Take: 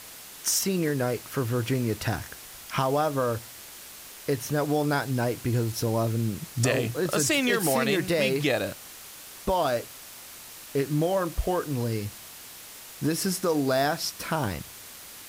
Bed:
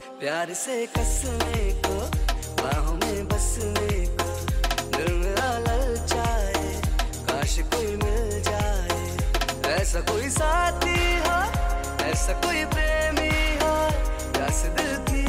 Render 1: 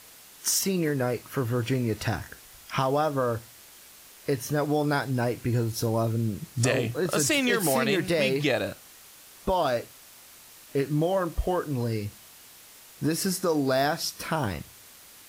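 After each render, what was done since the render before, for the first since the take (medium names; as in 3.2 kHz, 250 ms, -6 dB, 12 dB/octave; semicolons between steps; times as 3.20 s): noise print and reduce 6 dB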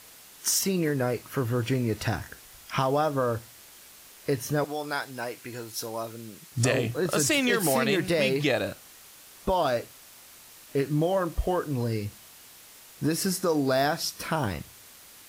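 4.64–6.52 s: high-pass 1 kHz 6 dB/octave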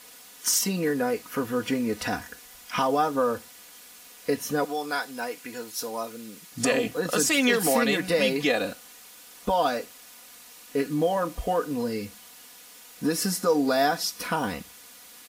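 bass shelf 89 Hz -11.5 dB; comb 4.1 ms, depth 74%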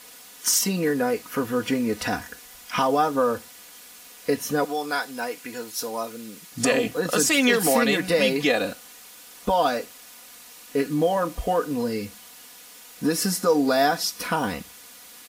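trim +2.5 dB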